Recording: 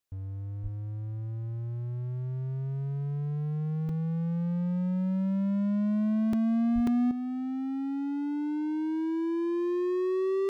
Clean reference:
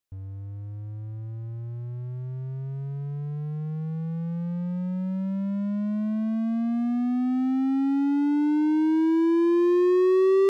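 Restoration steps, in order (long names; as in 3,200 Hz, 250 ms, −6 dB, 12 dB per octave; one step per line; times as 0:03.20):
high-pass at the plosives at 0:00.62/0:06.74
repair the gap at 0:03.89/0:06.33/0:06.87, 3.4 ms
level correction +8.5 dB, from 0:07.11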